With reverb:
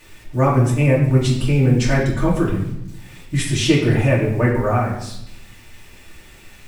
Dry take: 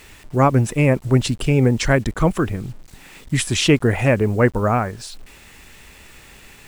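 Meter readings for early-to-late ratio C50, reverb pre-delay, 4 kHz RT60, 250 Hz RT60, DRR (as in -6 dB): 4.0 dB, 3 ms, 0.75 s, 1.1 s, -6.0 dB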